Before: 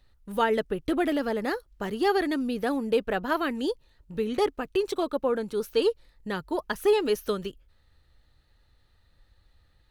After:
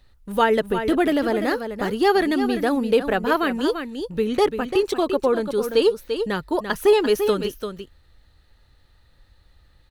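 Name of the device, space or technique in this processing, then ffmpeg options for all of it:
ducked delay: -filter_complex "[0:a]asplit=3[link_01][link_02][link_03];[link_02]adelay=342,volume=-7.5dB[link_04];[link_03]apad=whole_len=451910[link_05];[link_04][link_05]sidechaincompress=threshold=-27dB:ratio=8:attack=5.9:release=104[link_06];[link_01][link_06]amix=inputs=2:normalize=0,volume=6dB"

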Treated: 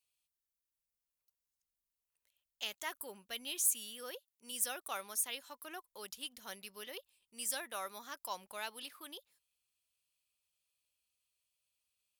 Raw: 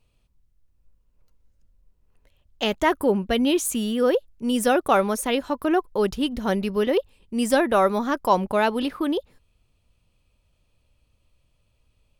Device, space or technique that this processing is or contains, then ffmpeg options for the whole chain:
low shelf boost with a cut just above: -filter_complex "[0:a]asettb=1/sr,asplit=3[link_01][link_02][link_03];[link_01]atrim=end=3.524[link_04];[link_02]atrim=start=3.52:end=4.52,asetpts=PTS-STARTPTS,afade=type=in:duration=0.004:curve=qsin,afade=type=out:start_time=0.996:duration=0.004:curve=qsin,highpass=120[link_05];[link_03]atrim=start=4.516[link_06];[link_04][link_05]acrossfade=duration=0.004:curve1=hsin:curve2=qsin[link_07];[link_07][link_06]acrossfade=duration=0.004:curve1=qsin:curve2=hsin,aderivative,lowshelf=frequency=100:gain=8,equalizer=frequency=320:width_type=o:width=0.99:gain=-2.5,volume=-5dB"

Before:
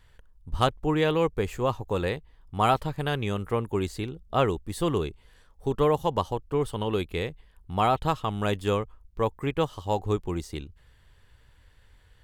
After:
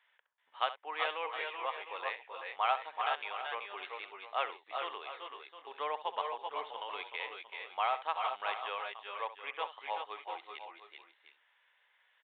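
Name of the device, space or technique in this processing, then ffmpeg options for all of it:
musical greeting card: -filter_complex "[0:a]asettb=1/sr,asplit=3[link_01][link_02][link_03];[link_01]atrim=end=5.744[link_04];[link_02]atrim=start=5.74:end=6.78,asetpts=PTS-STARTPTS,afade=type=in:duration=0.004:curve=qsin,afade=type=out:start_time=1.036:duration=0.004:curve=qsin,bass=frequency=250:gain=13,treble=frequency=4000:gain=3[link_05];[link_03]atrim=start=6.776[link_06];[link_04][link_05]acrossfade=duration=0.004:curve1=hsin:curve2=qsin[link_07];[link_07][link_06]acrossfade=duration=0.004:curve1=qsin:curve2=hsin,aresample=8000,aresample=44100,highpass=frequency=680:width=0.5412,highpass=frequency=680:width=1.3066,equalizer=frequency=2200:width_type=o:width=0.52:gain=6,aecho=1:1:68|381|396|708|735:0.2|0.447|0.447|0.237|0.112,volume=-7.5dB"

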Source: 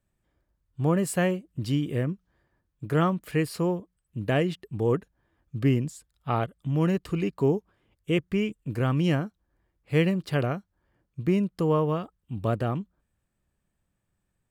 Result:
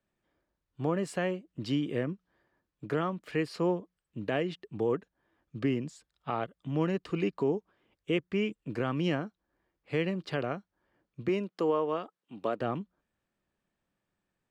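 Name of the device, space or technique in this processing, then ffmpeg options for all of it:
DJ mixer with the lows and highs turned down: -filter_complex "[0:a]asettb=1/sr,asplit=3[link_01][link_02][link_03];[link_01]atrim=end=11.284[link_04];[link_02]atrim=start=11.28:end=12.6,asetpts=PTS-STARTPTS,afade=type=in:duration=0.004:curve=qsin,afade=type=out:start_time=1.316:duration=0.004:curve=qsin,highpass=280[link_05];[link_03]atrim=start=12.596[link_06];[link_04][link_05]acrossfade=duration=0.004:curve1=hsin:curve2=qsin[link_07];[link_07][link_06]acrossfade=duration=0.004:curve1=qsin:curve2=hsin,acrossover=split=190 6400:gain=0.224 1 0.1[link_08][link_09][link_10];[link_08][link_09][link_10]amix=inputs=3:normalize=0,alimiter=limit=-19dB:level=0:latency=1:release=403"

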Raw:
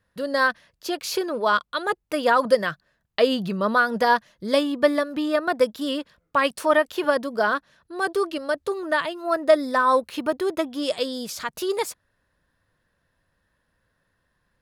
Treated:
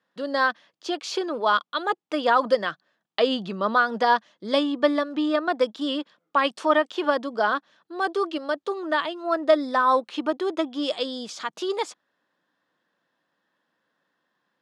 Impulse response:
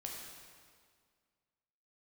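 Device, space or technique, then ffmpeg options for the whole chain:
television speaker: -af "highpass=frequency=190:width=0.5412,highpass=frequency=190:width=1.3066,equalizer=frequency=310:width_type=q:width=4:gain=5,equalizer=frequency=800:width_type=q:width=4:gain=6,equalizer=frequency=1200:width_type=q:width=4:gain=4,equalizer=frequency=3300:width_type=q:width=4:gain=6,lowpass=frequency=7500:width=0.5412,lowpass=frequency=7500:width=1.3066,volume=-3.5dB"

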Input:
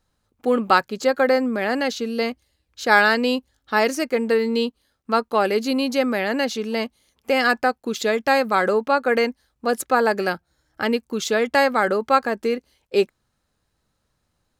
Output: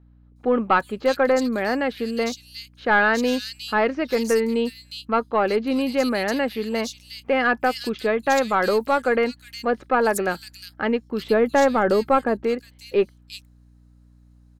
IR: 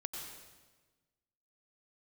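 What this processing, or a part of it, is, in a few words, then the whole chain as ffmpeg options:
valve amplifier with mains hum: -filter_complex "[0:a]aeval=exprs='(tanh(2.24*val(0)+0.15)-tanh(0.15))/2.24':channel_layout=same,aeval=exprs='val(0)+0.00282*(sin(2*PI*60*n/s)+sin(2*PI*2*60*n/s)/2+sin(2*PI*3*60*n/s)/3+sin(2*PI*4*60*n/s)/4+sin(2*PI*5*60*n/s)/5)':channel_layout=same,asettb=1/sr,asplit=3[link_01][link_02][link_03];[link_01]atrim=end=11.204[link_04];[link_02]atrim=start=11.2:end=12.44,asetpts=PTS-STARTPTS,afade=type=in:duration=0.004:curve=qsin,afade=type=out:start_time=1.236:duration=0.004:curve=qsin,tiltshelf=frequency=970:gain=5[link_05];[link_03]atrim=start=12.436[link_06];[link_04][link_05]acrossfade=duration=0.004:curve1=hsin:curve2=qsin[link_07];[link_07][link_06]acrossfade=duration=0.004:curve1=qsin:curve2=hsin,acrossover=split=3200[link_08][link_09];[link_09]adelay=360[link_10];[link_08][link_10]amix=inputs=2:normalize=0"

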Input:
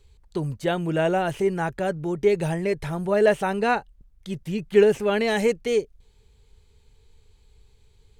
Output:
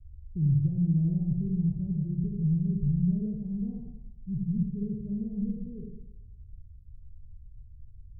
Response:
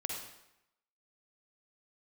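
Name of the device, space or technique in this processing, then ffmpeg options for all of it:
club heard from the street: -filter_complex "[0:a]alimiter=limit=-13dB:level=0:latency=1:release=435,lowpass=frequency=150:width=0.5412,lowpass=frequency=150:width=1.3066[link_01];[1:a]atrim=start_sample=2205[link_02];[link_01][link_02]afir=irnorm=-1:irlink=0,volume=8.5dB"

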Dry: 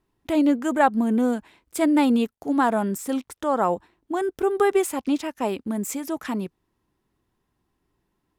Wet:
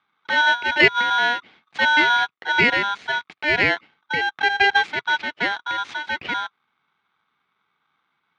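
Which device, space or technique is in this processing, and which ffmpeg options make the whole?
ring modulator pedal into a guitar cabinet: -af "aeval=exprs='val(0)*sgn(sin(2*PI*1200*n/s))':channel_layout=same,highpass=110,equalizer=frequency=120:width_type=q:width=4:gain=-4,equalizer=frequency=560:width_type=q:width=4:gain=-6,equalizer=frequency=970:width_type=q:width=4:gain=-4,equalizer=frequency=2200:width_type=q:width=4:gain=5,lowpass=frequency=3700:width=0.5412,lowpass=frequency=3700:width=1.3066,volume=3dB"

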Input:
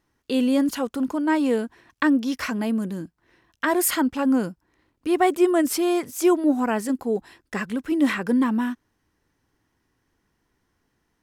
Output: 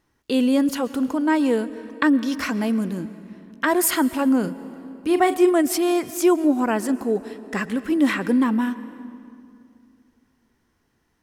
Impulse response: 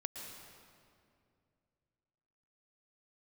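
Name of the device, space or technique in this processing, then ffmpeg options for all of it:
compressed reverb return: -filter_complex "[0:a]asettb=1/sr,asplit=3[link_01][link_02][link_03];[link_01]atrim=end=4.404[link_04];[link_02]atrim=start=4.4:end=5.52,asetpts=PTS-STARTPTS,afade=type=in:duration=0.004:curve=qsin,afade=type=out:start_time=1.116:duration=0.004:curve=qsin,asplit=2[link_05][link_06];[link_06]adelay=39,volume=-10dB[link_07];[link_05][link_07]amix=inputs=2:normalize=0,atrim=end_sample=49392[link_08];[link_03]atrim=start=5.516[link_09];[link_04][link_08]acrossfade=duration=0.004:curve1=hsin:curve2=qsin[link_10];[link_10][link_09]acrossfade=duration=0.004:curve1=qsin:curve2=hsin,asplit=2[link_11][link_12];[1:a]atrim=start_sample=2205[link_13];[link_12][link_13]afir=irnorm=-1:irlink=0,acompressor=threshold=-23dB:ratio=6,volume=-6.5dB[link_14];[link_11][link_14]amix=inputs=2:normalize=0"

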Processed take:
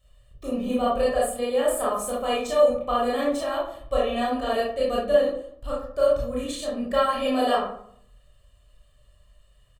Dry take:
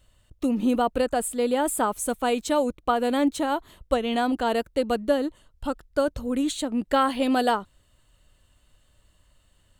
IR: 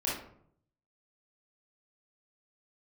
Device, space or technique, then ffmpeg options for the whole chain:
microphone above a desk: -filter_complex "[0:a]aecho=1:1:1.7:0.75[link_01];[1:a]atrim=start_sample=2205[link_02];[link_01][link_02]afir=irnorm=-1:irlink=0,volume=-8dB"

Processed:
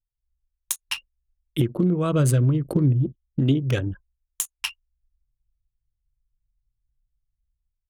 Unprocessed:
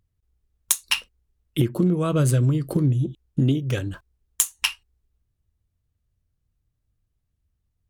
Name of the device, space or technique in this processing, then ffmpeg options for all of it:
voice memo with heavy noise removal: -filter_complex "[0:a]asplit=3[link_01][link_02][link_03];[link_01]afade=type=out:start_time=3.07:duration=0.02[link_04];[link_02]tiltshelf=frequency=880:gain=-4,afade=type=in:start_time=3.07:duration=0.02,afade=type=out:start_time=3.48:duration=0.02[link_05];[link_03]afade=type=in:start_time=3.48:duration=0.02[link_06];[link_04][link_05][link_06]amix=inputs=3:normalize=0,anlmdn=15.8,dynaudnorm=framelen=120:gausssize=5:maxgain=13dB,volume=-8dB"

